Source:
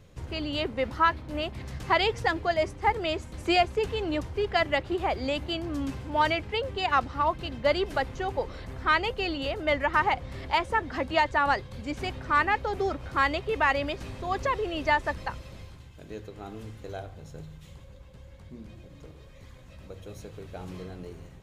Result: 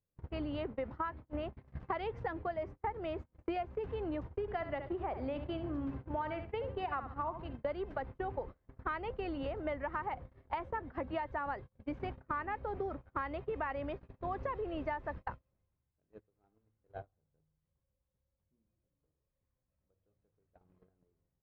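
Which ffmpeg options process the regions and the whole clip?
ffmpeg -i in.wav -filter_complex "[0:a]asettb=1/sr,asplit=3[link_01][link_02][link_03];[link_01]atrim=end=4.414[link_04];[link_02]atrim=start=4.41:end=7.53,asetpts=PTS-STARTPTS,afade=type=in:duration=0.004:curve=qsin,afade=type=out:start_time=3.116:duration=0.004:curve=qsin,highshelf=frequency=8100:gain=-9.5,aecho=1:1:69|138|207:0.282|0.0761|0.0205,atrim=end_sample=137592[link_05];[link_03]atrim=start=7.526[link_06];[link_04][link_05]acrossfade=duration=0.004:curve1=hsin:curve2=qsin[link_07];[link_07][link_06]acrossfade=duration=0.004:curve1=qsin:curve2=hsin,lowpass=1500,agate=range=-38dB:threshold=-34dB:ratio=16:detection=peak,acompressor=threshold=-37dB:ratio=6,volume=1.5dB" out.wav

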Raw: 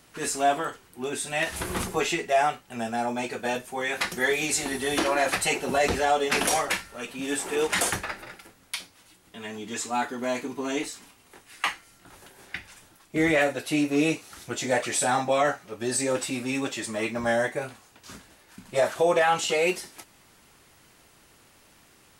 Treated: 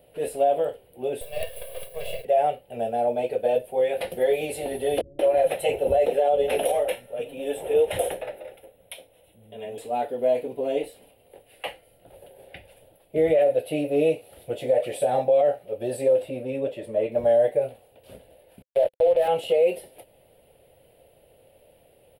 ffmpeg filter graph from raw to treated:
ffmpeg -i in.wav -filter_complex "[0:a]asettb=1/sr,asplit=3[link_01][link_02][link_03];[link_01]atrim=end=1.214[link_04];[link_02]atrim=start=1.21:end=2.25,asetpts=PTS-STARTPTS,afade=type=in:duration=0.004:curve=qsin,afade=type=out:start_time=1.036:duration=0.004:curve=qsin,highpass=1200,acrusher=bits=4:dc=4:mix=0:aa=0.000001,aecho=1:1:1.8:0.89,atrim=end_sample=45864[link_05];[link_03]atrim=start=2.246[link_06];[link_04][link_05]acrossfade=duration=0.004:curve1=hsin:curve2=qsin[link_07];[link_07][link_06]acrossfade=duration=0.004:curve1=qsin:curve2=hsin,asettb=1/sr,asplit=3[link_08][link_09][link_10];[link_08]atrim=end=5.014[link_11];[link_09]atrim=start=5.01:end=9.78,asetpts=PTS-STARTPTS,afade=type=in:duration=0.004:curve=qsin,afade=type=out:start_time=4.766:duration=0.004:curve=qsin,asuperstop=centerf=4600:order=4:qfactor=5.8,acrossover=split=190[link_12][link_13];[link_13]adelay=180[link_14];[link_12][link_14]amix=inputs=2:normalize=0,atrim=end_sample=210357[link_15];[link_10]atrim=start=9.776[link_16];[link_11][link_15]acrossfade=duration=0.004:curve1=hsin:curve2=qsin[link_17];[link_17][link_16]acrossfade=duration=0.004:curve1=qsin:curve2=hsin,asettb=1/sr,asplit=3[link_18][link_19][link_20];[link_18]atrim=end=16.224[link_21];[link_19]atrim=start=16.22:end=17.12,asetpts=PTS-STARTPTS,afade=type=in:duration=0.004:curve=qsin,afade=type=out:start_time=0.896:duration=0.004:curve=qsin,highshelf=frequency=2500:gain=-10,bandreject=frequency=800:width=11[link_22];[link_20]atrim=start=17.116[link_23];[link_21][link_22]acrossfade=duration=0.004:curve1=hsin:curve2=qsin[link_24];[link_24][link_23]acrossfade=duration=0.004:curve1=qsin:curve2=hsin,asettb=1/sr,asplit=3[link_25][link_26][link_27];[link_25]atrim=end=18.624[link_28];[link_26]atrim=start=18.62:end=19.28,asetpts=PTS-STARTPTS,afade=type=in:duration=0.004:curve=qsin,afade=type=out:start_time=0.656:duration=0.004:curve=qsin,bass=frequency=250:gain=-10,treble=frequency=4000:gain=-7,acrusher=bits=3:mix=0:aa=0.5[link_29];[link_27]atrim=start=19.276[link_30];[link_28][link_29]acrossfade=duration=0.004:curve1=hsin:curve2=qsin[link_31];[link_31][link_30]acrossfade=duration=0.004:curve1=qsin:curve2=hsin,firequalizer=gain_entry='entry(140,0);entry(200,-6);entry(350,-3);entry(520,15);entry(1100,-18);entry(2900,-4);entry(6300,-29);entry(10000,-3)':delay=0.05:min_phase=1,alimiter=limit=-12.5dB:level=0:latency=1:release=86" out.wav

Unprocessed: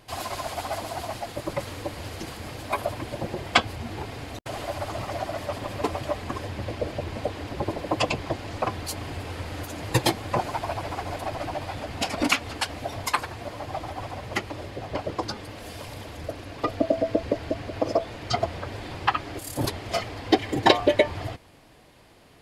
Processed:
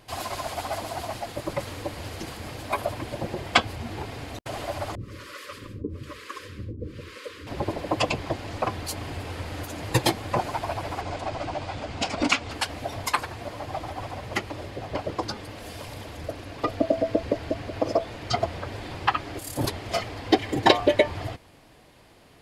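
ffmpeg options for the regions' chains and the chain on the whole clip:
ffmpeg -i in.wav -filter_complex "[0:a]asettb=1/sr,asplit=3[link_01][link_02][link_03];[link_01]atrim=end=4.954[link_04];[link_02]atrim=start=4.95:end=7.47,asetpts=PTS-STARTPTS,afade=type=in:duration=0.004:curve=qsin,afade=type=out:start_time=2.516:duration=0.004:curve=qsin,asuperstop=centerf=750:order=8:qfactor=1.4,acrossover=split=430[link_05][link_06];[link_05]aeval=exprs='val(0)*(1-1/2+1/2*cos(2*PI*1.1*n/s))':channel_layout=same[link_07];[link_06]aeval=exprs='val(0)*(1-1/2-1/2*cos(2*PI*1.1*n/s))':channel_layout=same[link_08];[link_07][link_08]amix=inputs=2:normalize=0[link_09];[link_03]atrim=start=7.466[link_10];[link_04][link_09]acrossfade=duration=0.004:curve1=hsin:curve2=qsin[link_11];[link_11][link_10]acrossfade=duration=0.004:curve1=qsin:curve2=hsin,asettb=1/sr,asplit=3[link_12][link_13][link_14];[link_12]atrim=end=11.014[link_15];[link_13]atrim=start=11.01:end=12.51,asetpts=PTS-STARTPTS,afade=type=in:duration=0.004:curve=qsin,afade=type=out:start_time=1.496:duration=0.004:curve=qsin,lowpass=frequency=8200:width=0.5412,lowpass=frequency=8200:width=1.3066,bandreject=frequency=1800:width=19[link_16];[link_14]atrim=start=12.506[link_17];[link_15][link_16]acrossfade=duration=0.004:curve1=hsin:curve2=qsin[link_18];[link_18][link_17]acrossfade=duration=0.004:curve1=qsin:curve2=hsin" out.wav

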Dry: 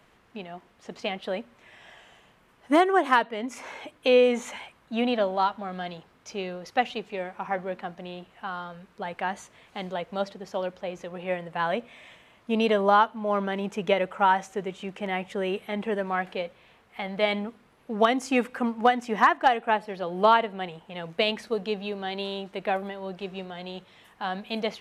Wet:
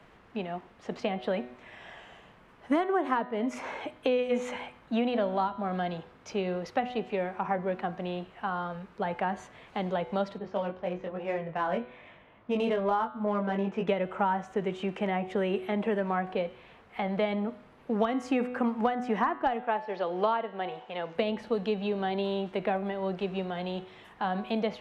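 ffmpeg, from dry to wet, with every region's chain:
ffmpeg -i in.wav -filter_complex "[0:a]asettb=1/sr,asplit=3[link_01][link_02][link_03];[link_01]atrim=end=10.384[link_04];[link_02]atrim=start=10.38:end=13.88,asetpts=PTS-STARTPTS,afade=type=in:duration=0.004:curve=qsin,afade=type=out:start_time=3.496:duration=0.004:curve=qsin,flanger=delay=19:depth=3.1:speed=1,adynamicsmooth=sensitivity=6.5:basefreq=2900[link_05];[link_03]atrim=start=13.876[link_06];[link_04][link_05]acrossfade=duration=0.004:curve1=hsin:curve2=qsin[link_07];[link_07][link_06]acrossfade=duration=0.004:curve1=qsin:curve2=hsin,asettb=1/sr,asplit=3[link_08][link_09][link_10];[link_08]atrim=end=19.644[link_11];[link_09]atrim=start=19.64:end=21.15,asetpts=PTS-STARTPTS,afade=type=in:duration=0.004:curve=qsin,afade=type=out:start_time=1.506:duration=0.004:curve=qsin,lowpass=frequency=6500:width=0.5412,lowpass=frequency=6500:width=1.3066,bass=frequency=250:gain=-15,treble=frequency=4000:gain=3[link_12];[link_10]atrim=start=21.146[link_13];[link_11][link_12]acrossfade=duration=0.004:curve1=hsin:curve2=qsin[link_14];[link_14][link_13]acrossfade=duration=0.004:curve1=qsin:curve2=hsin,lowpass=frequency=2300:poles=1,bandreject=frequency=124:width_type=h:width=4,bandreject=frequency=248:width_type=h:width=4,bandreject=frequency=372:width_type=h:width=4,bandreject=frequency=496:width_type=h:width=4,bandreject=frequency=620:width_type=h:width=4,bandreject=frequency=744:width_type=h:width=4,bandreject=frequency=868:width_type=h:width=4,bandreject=frequency=992:width_type=h:width=4,bandreject=frequency=1116:width_type=h:width=4,bandreject=frequency=1240:width_type=h:width=4,bandreject=frequency=1364:width_type=h:width=4,bandreject=frequency=1488:width_type=h:width=4,bandreject=frequency=1612:width_type=h:width=4,bandreject=frequency=1736:width_type=h:width=4,bandreject=frequency=1860:width_type=h:width=4,bandreject=frequency=1984:width_type=h:width=4,bandreject=frequency=2108:width_type=h:width=4,bandreject=frequency=2232:width_type=h:width=4,bandreject=frequency=2356:width_type=h:width=4,bandreject=frequency=2480:width_type=h:width=4,bandreject=frequency=2604:width_type=h:width=4,bandreject=frequency=2728:width_type=h:width=4,bandreject=frequency=2852:width_type=h:width=4,bandreject=frequency=2976:width_type=h:width=4,bandreject=frequency=3100:width_type=h:width=4,bandreject=frequency=3224:width_type=h:width=4,bandreject=frequency=3348:width_type=h:width=4,bandreject=frequency=3472:width_type=h:width=4,bandreject=frequency=3596:width_type=h:width=4,bandreject=frequency=3720:width_type=h:width=4,bandreject=frequency=3844:width_type=h:width=4,bandreject=frequency=3968:width_type=h:width=4,bandreject=frequency=4092:width_type=h:width=4,bandreject=frequency=4216:width_type=h:width=4,bandreject=frequency=4340:width_type=h:width=4,acrossover=split=220|1200[link_15][link_16][link_17];[link_15]acompressor=threshold=-40dB:ratio=4[link_18];[link_16]acompressor=threshold=-33dB:ratio=4[link_19];[link_17]acompressor=threshold=-45dB:ratio=4[link_20];[link_18][link_19][link_20]amix=inputs=3:normalize=0,volume=5dB" out.wav

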